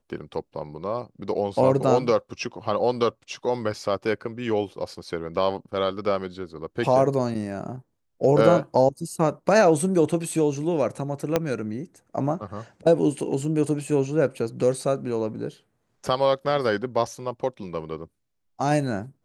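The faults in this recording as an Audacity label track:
11.360000	11.360000	pop -7 dBFS

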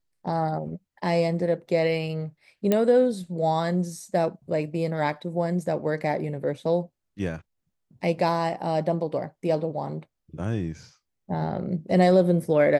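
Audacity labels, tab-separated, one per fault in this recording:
2.720000	2.720000	pop -9 dBFS

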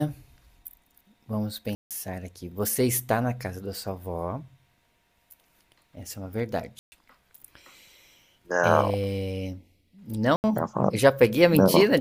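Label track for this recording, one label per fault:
1.750000	1.910000	dropout 157 ms
6.790000	6.920000	dropout 130 ms
10.360000	10.440000	dropout 79 ms

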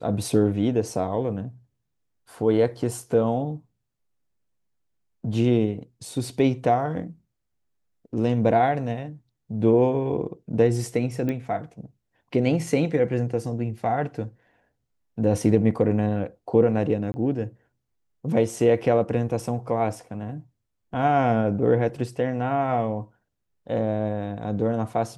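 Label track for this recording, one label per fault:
11.290000	11.290000	pop -17 dBFS
17.120000	17.140000	dropout 20 ms

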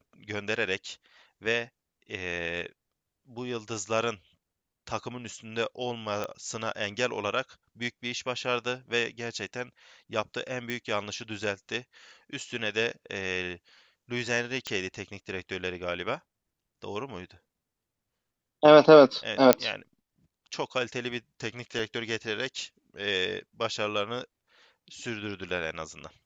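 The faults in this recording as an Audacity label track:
6.240000	6.240000	pop -18 dBFS
10.700000	10.700000	pop -19 dBFS
14.670000	14.670000	pop -16 dBFS
19.530000	19.530000	pop -2 dBFS
21.790000	21.790000	dropout 3.2 ms
25.490000	25.490000	dropout 2 ms

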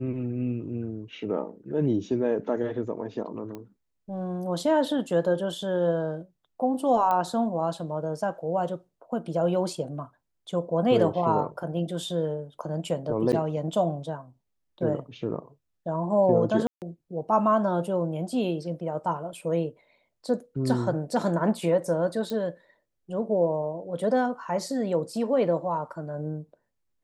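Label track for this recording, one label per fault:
3.550000	3.550000	pop -25 dBFS
7.110000	7.110000	pop -16 dBFS
13.320000	13.330000	dropout 7.8 ms
16.670000	16.820000	dropout 148 ms
22.300000	22.300000	pop -20 dBFS

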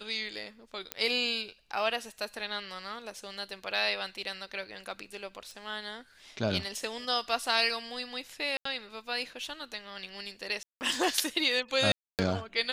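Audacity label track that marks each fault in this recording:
0.920000	0.920000	pop -14 dBFS
5.510000	5.510000	pop
8.570000	8.650000	dropout 84 ms
10.630000	10.810000	dropout 179 ms
11.920000	12.190000	dropout 268 ms

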